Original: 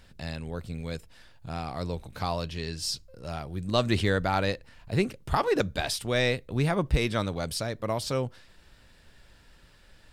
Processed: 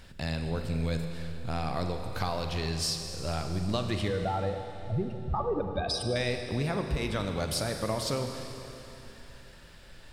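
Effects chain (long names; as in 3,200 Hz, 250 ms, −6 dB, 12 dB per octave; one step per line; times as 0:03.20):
0:04.08–0:06.16: expanding power law on the bin magnitudes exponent 2.3
downward compressor 6 to 1, threshold −32 dBFS, peak gain reduction 13 dB
four-comb reverb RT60 3.3 s, combs from 33 ms, DRR 5 dB
level +4 dB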